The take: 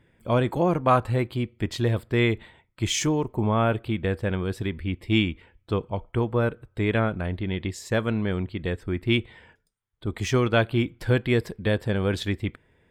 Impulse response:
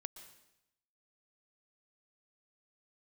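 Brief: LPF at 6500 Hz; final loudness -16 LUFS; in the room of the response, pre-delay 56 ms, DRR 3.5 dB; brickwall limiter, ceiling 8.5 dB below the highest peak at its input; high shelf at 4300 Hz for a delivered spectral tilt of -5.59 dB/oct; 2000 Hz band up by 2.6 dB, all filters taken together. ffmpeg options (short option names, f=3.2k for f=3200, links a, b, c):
-filter_complex "[0:a]lowpass=6.5k,equalizer=f=2k:t=o:g=5,highshelf=f=4.3k:g=-8,alimiter=limit=-15.5dB:level=0:latency=1,asplit=2[a][b];[1:a]atrim=start_sample=2205,adelay=56[c];[b][c]afir=irnorm=-1:irlink=0,volume=0.5dB[d];[a][d]amix=inputs=2:normalize=0,volume=10dB"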